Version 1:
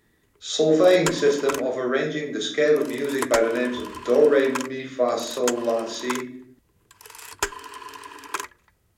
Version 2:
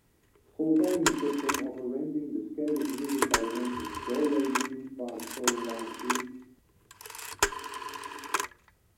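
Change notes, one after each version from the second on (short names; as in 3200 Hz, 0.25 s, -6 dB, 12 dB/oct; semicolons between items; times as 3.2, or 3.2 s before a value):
speech: add vocal tract filter u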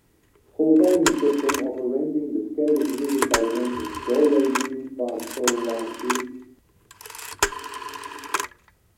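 speech: add bell 520 Hz +12 dB 2 oct; background +4.5 dB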